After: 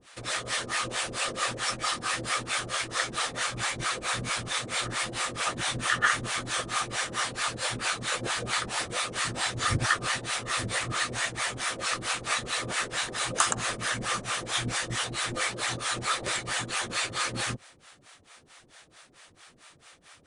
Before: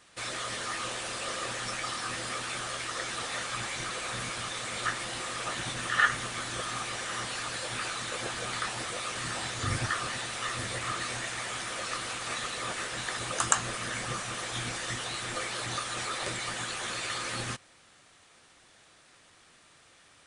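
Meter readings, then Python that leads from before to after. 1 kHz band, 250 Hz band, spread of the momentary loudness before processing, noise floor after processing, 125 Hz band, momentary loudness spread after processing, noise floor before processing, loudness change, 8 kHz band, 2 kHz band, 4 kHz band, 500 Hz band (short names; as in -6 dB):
+3.5 dB, +3.5 dB, 4 LU, -60 dBFS, +3.5 dB, 4 LU, -59 dBFS, +3.5 dB, +3.5 dB, +3.5 dB, +4.0 dB, +2.5 dB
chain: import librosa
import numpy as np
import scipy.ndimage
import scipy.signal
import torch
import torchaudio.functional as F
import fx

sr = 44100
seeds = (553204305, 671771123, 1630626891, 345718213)

y = fx.harmonic_tremolo(x, sr, hz=4.5, depth_pct=100, crossover_hz=520.0)
y = y * 10.0 ** (8.5 / 20.0)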